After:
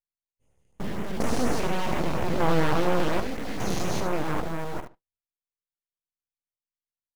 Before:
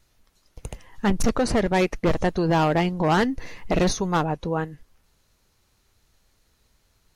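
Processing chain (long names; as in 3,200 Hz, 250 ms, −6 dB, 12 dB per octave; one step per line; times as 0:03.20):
spectrum averaged block by block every 400 ms
repeating echo 73 ms, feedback 25%, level −9 dB
noise reduction from a noise print of the clip's start 21 dB
noise gate with hold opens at −32 dBFS
in parallel at −9 dB: bit reduction 6 bits
on the sum: auto-filter notch sine 4.2 Hz 850–4,600 Hz
full-wave rectification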